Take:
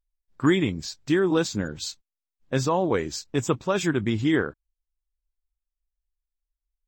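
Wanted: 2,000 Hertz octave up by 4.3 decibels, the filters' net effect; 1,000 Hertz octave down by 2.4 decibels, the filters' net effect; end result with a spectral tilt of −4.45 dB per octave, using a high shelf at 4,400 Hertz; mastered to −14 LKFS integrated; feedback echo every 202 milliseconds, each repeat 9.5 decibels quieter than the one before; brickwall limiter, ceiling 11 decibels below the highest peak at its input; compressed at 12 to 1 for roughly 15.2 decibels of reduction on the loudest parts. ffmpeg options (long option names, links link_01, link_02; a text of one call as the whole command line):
ffmpeg -i in.wav -af "equalizer=frequency=1000:width_type=o:gain=-5,equalizer=frequency=2000:width_type=o:gain=8,highshelf=frequency=4400:gain=-5,acompressor=threshold=-31dB:ratio=12,alimiter=level_in=6dB:limit=-24dB:level=0:latency=1,volume=-6dB,aecho=1:1:202|404|606|808:0.335|0.111|0.0365|0.012,volume=26dB" out.wav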